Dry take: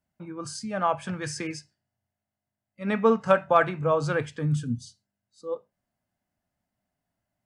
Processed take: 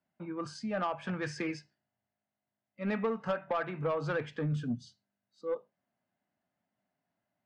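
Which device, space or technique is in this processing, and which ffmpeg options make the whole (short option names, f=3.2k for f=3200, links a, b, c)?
AM radio: -af "highpass=170,lowpass=3.3k,acompressor=threshold=-26dB:ratio=8,asoftclip=type=tanh:threshold=-24dB"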